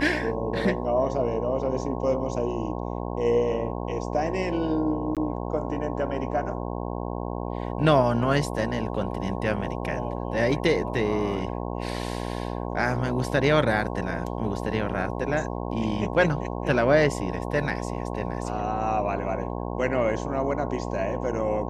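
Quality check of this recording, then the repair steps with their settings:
mains buzz 60 Hz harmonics 18 −31 dBFS
0:05.15–0:05.17: drop-out 17 ms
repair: hum removal 60 Hz, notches 18
repair the gap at 0:05.15, 17 ms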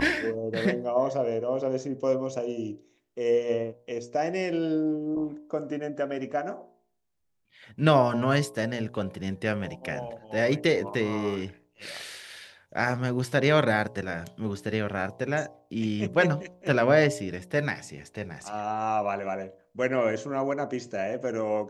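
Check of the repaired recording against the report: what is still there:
none of them is left

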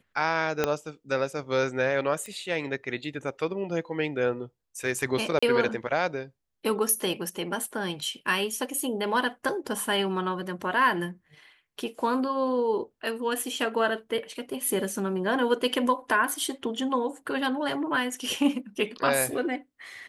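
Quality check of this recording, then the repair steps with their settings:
0:00.64: click −9 dBFS
0:02.26: click −23 dBFS
0:05.39–0:05.42: drop-out 35 ms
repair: click removal
repair the gap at 0:05.39, 35 ms

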